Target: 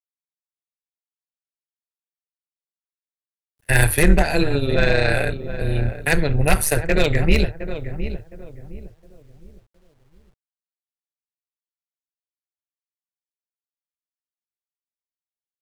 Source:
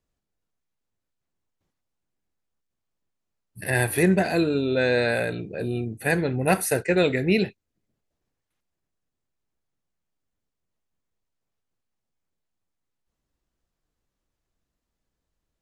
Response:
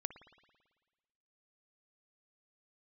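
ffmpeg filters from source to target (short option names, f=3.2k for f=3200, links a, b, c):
-filter_complex "[0:a]agate=range=-38dB:threshold=-28dB:ratio=16:detection=peak,acrossover=split=170|1900[a][b][c];[c]acontrast=38[d];[a][b][d]amix=inputs=3:normalize=0,aeval=exprs='0.596*(cos(1*acos(clip(val(0)/0.596,-1,1)))-cos(1*PI/2))+0.119*(cos(2*acos(clip(val(0)/0.596,-1,1)))-cos(2*PI/2))':c=same,asplit=2[e][f];[f]adelay=713,lowpass=f=940:p=1,volume=-10dB,asplit=2[g][h];[h]adelay=713,lowpass=f=940:p=1,volume=0.32,asplit=2[i][j];[j]adelay=713,lowpass=f=940:p=1,volume=0.32,asplit=2[k][l];[l]adelay=713,lowpass=f=940:p=1,volume=0.32[m];[g][i][k][m]amix=inputs=4:normalize=0[n];[e][n]amix=inputs=2:normalize=0,aeval=exprs='0.266*(abs(mod(val(0)/0.266+3,4)-2)-1)':c=same,tremolo=f=150:d=0.75,asubboost=boost=8.5:cutoff=82,dynaudnorm=f=460:g=11:m=7.5dB,acrusher=bits=10:mix=0:aa=0.000001,adynamicequalizer=threshold=0.0158:dfrequency=2200:dqfactor=0.7:tfrequency=2200:tqfactor=0.7:attack=5:release=100:ratio=0.375:range=2:mode=cutabove:tftype=highshelf,volume=1.5dB"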